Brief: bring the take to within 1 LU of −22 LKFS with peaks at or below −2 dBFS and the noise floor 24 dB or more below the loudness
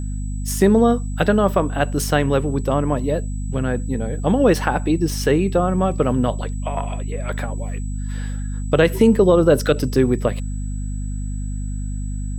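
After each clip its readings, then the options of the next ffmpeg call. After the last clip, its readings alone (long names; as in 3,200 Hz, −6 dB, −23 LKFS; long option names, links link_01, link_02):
mains hum 50 Hz; hum harmonics up to 250 Hz; level of the hum −23 dBFS; interfering tone 7,900 Hz; level of the tone −43 dBFS; integrated loudness −20.0 LKFS; sample peak −3.0 dBFS; target loudness −22.0 LKFS
→ -af "bandreject=frequency=50:width_type=h:width=6,bandreject=frequency=100:width_type=h:width=6,bandreject=frequency=150:width_type=h:width=6,bandreject=frequency=200:width_type=h:width=6,bandreject=frequency=250:width_type=h:width=6"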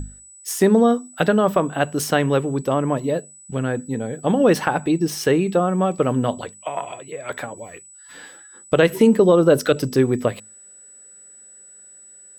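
mains hum none found; interfering tone 7,900 Hz; level of the tone −43 dBFS
→ -af "bandreject=frequency=7900:width=30"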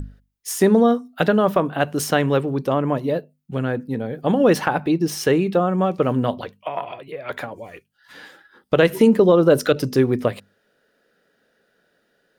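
interfering tone none found; integrated loudness −19.5 LKFS; sample peak −4.0 dBFS; target loudness −22.0 LKFS
→ -af "volume=-2.5dB"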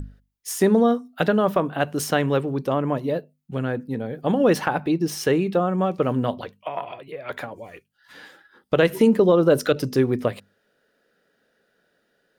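integrated loudness −22.0 LKFS; sample peak −6.5 dBFS; background noise floor −69 dBFS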